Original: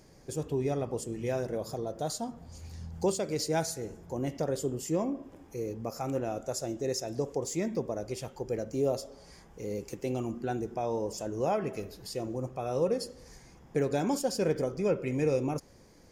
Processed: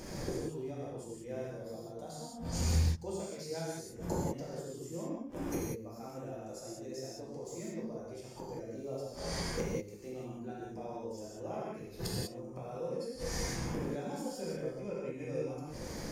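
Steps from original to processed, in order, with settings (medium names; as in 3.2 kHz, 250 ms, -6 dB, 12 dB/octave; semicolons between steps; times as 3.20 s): inverted gate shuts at -35 dBFS, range -27 dB; gated-style reverb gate 220 ms flat, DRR -6.5 dB; trim +9.5 dB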